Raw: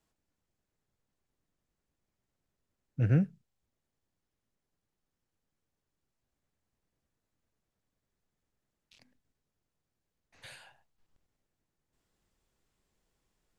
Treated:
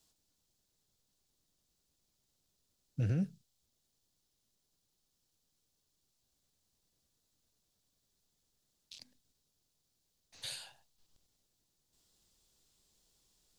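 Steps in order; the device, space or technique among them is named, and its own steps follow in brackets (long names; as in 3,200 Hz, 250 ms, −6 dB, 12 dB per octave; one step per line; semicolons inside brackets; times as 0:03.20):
over-bright horn tweeter (high shelf with overshoot 2,900 Hz +10.5 dB, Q 1.5; brickwall limiter −25.5 dBFS, peak gain reduction 10.5 dB)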